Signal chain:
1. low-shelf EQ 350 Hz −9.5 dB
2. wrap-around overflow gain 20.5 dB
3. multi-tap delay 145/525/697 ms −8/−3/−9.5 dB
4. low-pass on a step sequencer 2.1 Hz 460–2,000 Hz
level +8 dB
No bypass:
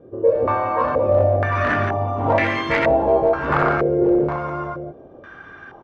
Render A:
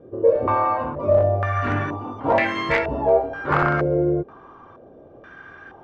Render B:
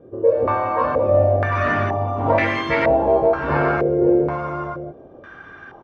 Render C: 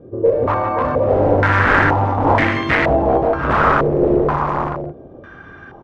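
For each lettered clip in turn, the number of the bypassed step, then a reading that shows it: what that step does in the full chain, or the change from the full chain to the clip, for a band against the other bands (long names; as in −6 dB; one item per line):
3, change in integrated loudness −2.0 LU
2, distortion level −10 dB
1, 500 Hz band −3.0 dB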